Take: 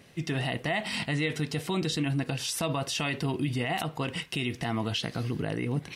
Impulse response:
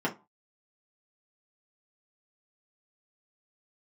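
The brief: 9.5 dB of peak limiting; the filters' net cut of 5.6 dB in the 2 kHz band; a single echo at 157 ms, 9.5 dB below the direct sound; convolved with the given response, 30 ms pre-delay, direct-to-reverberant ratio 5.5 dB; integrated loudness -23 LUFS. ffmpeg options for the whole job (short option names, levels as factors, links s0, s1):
-filter_complex "[0:a]equalizer=f=2000:t=o:g=-7,alimiter=level_in=1.78:limit=0.0631:level=0:latency=1,volume=0.562,aecho=1:1:157:0.335,asplit=2[s0][s1];[1:a]atrim=start_sample=2205,adelay=30[s2];[s1][s2]afir=irnorm=-1:irlink=0,volume=0.188[s3];[s0][s3]amix=inputs=2:normalize=0,volume=3.98"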